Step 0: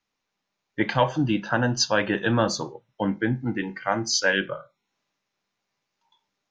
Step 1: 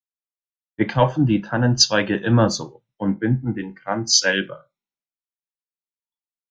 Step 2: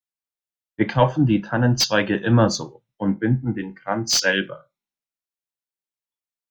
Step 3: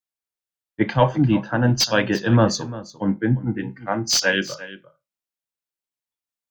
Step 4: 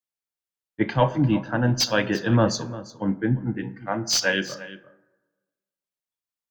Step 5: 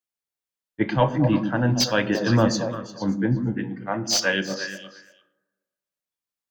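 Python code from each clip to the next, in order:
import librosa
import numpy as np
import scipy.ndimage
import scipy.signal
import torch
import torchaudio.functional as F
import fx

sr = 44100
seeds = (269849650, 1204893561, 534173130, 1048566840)

y1 = fx.low_shelf(x, sr, hz=330.0, db=7.5)
y1 = fx.band_widen(y1, sr, depth_pct=100)
y2 = fx.slew_limit(y1, sr, full_power_hz=870.0)
y3 = y2 + 10.0 ** (-16.5 / 20.0) * np.pad(y2, (int(347 * sr / 1000.0), 0))[:len(y2)]
y4 = fx.rev_plate(y3, sr, seeds[0], rt60_s=1.3, hf_ratio=0.35, predelay_ms=0, drr_db=15.5)
y4 = y4 * librosa.db_to_amplitude(-3.0)
y5 = fx.echo_stepped(y4, sr, ms=116, hz=220.0, octaves=1.4, feedback_pct=70, wet_db=-3.0)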